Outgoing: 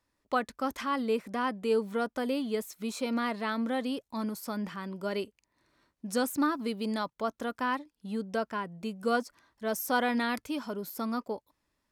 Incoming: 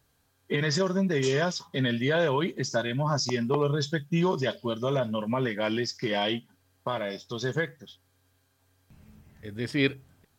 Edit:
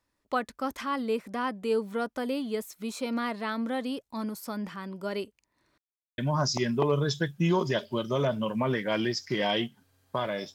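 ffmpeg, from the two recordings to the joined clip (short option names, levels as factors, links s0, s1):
-filter_complex "[0:a]apad=whole_dur=10.54,atrim=end=10.54,asplit=2[s0][s1];[s0]atrim=end=5.78,asetpts=PTS-STARTPTS,afade=t=out:st=5.776:d=0.004:c=hsin[s2];[s1]atrim=start=5.78:end=6.18,asetpts=PTS-STARTPTS,volume=0[s3];[1:a]atrim=start=2.9:end=7.26,asetpts=PTS-STARTPTS,afade=t=in:d=0.004:c=hsin[s4];[s2][s3][s4]concat=n=3:v=0:a=1"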